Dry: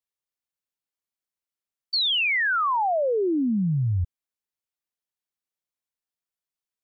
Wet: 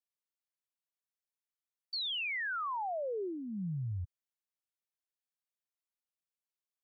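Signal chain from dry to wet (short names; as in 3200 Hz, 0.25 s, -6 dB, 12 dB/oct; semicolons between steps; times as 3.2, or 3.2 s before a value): HPF 110 Hz; bell 270 Hz -11 dB 1.1 oct; limiter -25.5 dBFS, peak gain reduction 5.5 dB; gain -7.5 dB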